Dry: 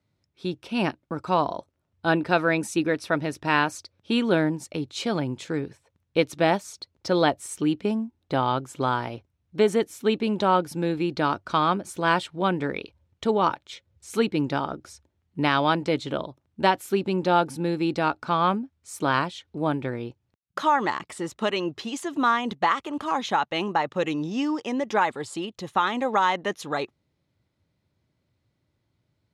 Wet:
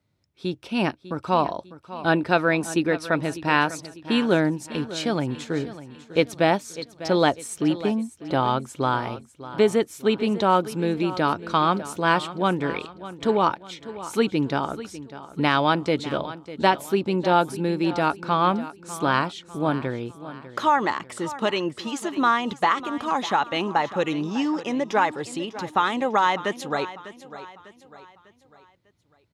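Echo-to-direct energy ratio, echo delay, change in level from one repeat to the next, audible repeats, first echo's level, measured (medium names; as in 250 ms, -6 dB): -14.0 dB, 599 ms, -7.5 dB, 3, -15.0 dB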